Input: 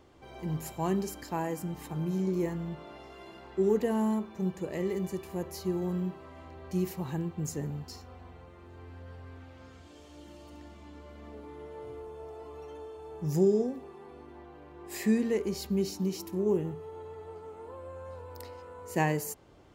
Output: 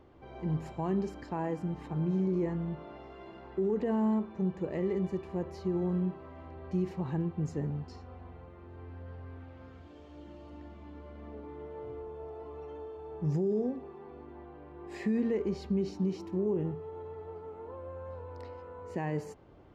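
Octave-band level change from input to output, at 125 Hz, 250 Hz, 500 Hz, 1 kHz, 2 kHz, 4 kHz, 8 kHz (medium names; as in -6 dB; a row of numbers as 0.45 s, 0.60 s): +0.5 dB, -0.5 dB, -2.5 dB, -3.5 dB, -6.5 dB, no reading, under -15 dB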